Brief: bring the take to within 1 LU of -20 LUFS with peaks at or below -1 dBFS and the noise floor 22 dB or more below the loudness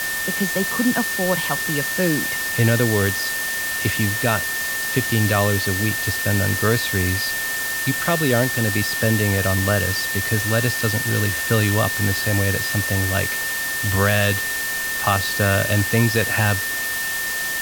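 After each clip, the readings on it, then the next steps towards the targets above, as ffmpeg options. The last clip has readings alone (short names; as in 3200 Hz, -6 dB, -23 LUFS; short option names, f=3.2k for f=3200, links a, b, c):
steady tone 1800 Hz; tone level -24 dBFS; noise floor -25 dBFS; noise floor target -42 dBFS; loudness -19.5 LUFS; peak -3.5 dBFS; loudness target -20.0 LUFS
-> -af "bandreject=f=1.8k:w=30"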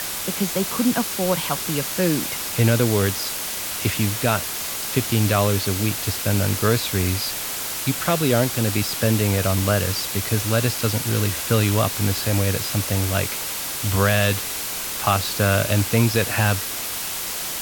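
steady tone none; noise floor -28 dBFS; noise floor target -43 dBFS
-> -af "afftdn=nr=15:nf=-28"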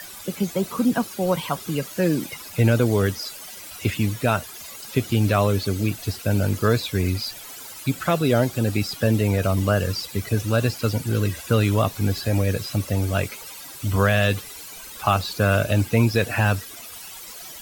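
noise floor -39 dBFS; noise floor target -45 dBFS
-> -af "afftdn=nr=6:nf=-39"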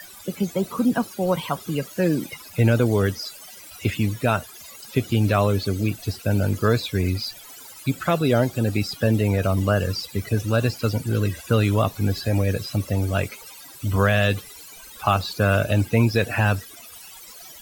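noise floor -43 dBFS; noise floor target -45 dBFS
-> -af "afftdn=nr=6:nf=-43"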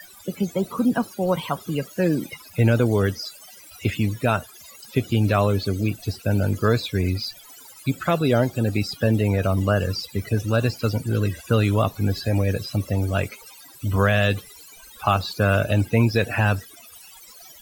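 noise floor -46 dBFS; loudness -23.0 LUFS; peak -6.0 dBFS; loudness target -20.0 LUFS
-> -af "volume=3dB"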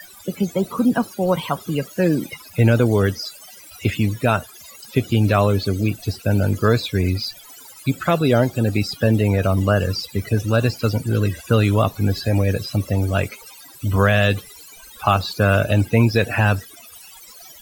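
loudness -20.0 LUFS; peak -3.0 dBFS; noise floor -43 dBFS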